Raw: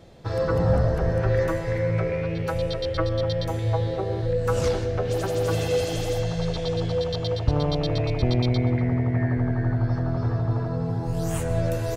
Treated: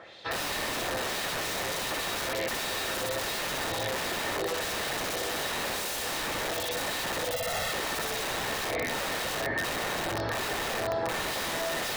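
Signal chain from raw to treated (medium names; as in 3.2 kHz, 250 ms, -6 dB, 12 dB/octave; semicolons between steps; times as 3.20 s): octave divider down 1 oct, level 0 dB; LFO band-pass sine 1.4 Hz 430–3900 Hz; flutter echo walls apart 10.9 m, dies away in 1 s; peak limiter -26 dBFS, peak gain reduction 11 dB; on a send at -20 dB: reverberation RT60 1.4 s, pre-delay 77 ms; on the sum: dynamic bell 3.3 kHz, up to -3 dB, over -54 dBFS, Q 1.9; integer overflow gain 37 dB; 7.32–7.72 s: comb 1.5 ms, depth 88%; in parallel at -2.5 dB: compressor with a negative ratio -46 dBFS, ratio -0.5; on the sum: peaking EQ 570 Hz +6.5 dB 1.8 oct; small resonant body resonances 1.8/3.8 kHz, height 9 dB; trim +5 dB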